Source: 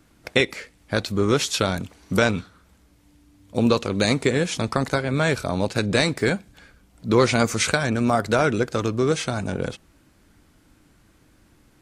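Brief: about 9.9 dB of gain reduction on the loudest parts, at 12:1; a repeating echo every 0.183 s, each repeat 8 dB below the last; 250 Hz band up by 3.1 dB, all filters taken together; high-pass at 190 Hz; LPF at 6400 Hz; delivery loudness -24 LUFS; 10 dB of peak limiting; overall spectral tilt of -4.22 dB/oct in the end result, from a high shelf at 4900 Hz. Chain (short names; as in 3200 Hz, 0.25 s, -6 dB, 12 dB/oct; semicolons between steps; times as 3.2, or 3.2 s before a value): HPF 190 Hz; LPF 6400 Hz; bell 250 Hz +5.5 dB; high shelf 4900 Hz +7.5 dB; compressor 12:1, threshold -21 dBFS; limiter -16.5 dBFS; feedback echo 0.183 s, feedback 40%, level -8 dB; gain +4.5 dB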